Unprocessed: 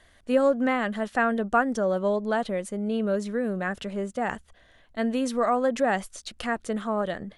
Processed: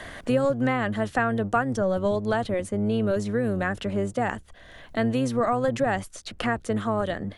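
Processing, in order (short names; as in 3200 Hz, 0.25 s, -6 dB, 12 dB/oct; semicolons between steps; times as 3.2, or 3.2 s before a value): octaver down 1 oct, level -4 dB; three-band squash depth 70%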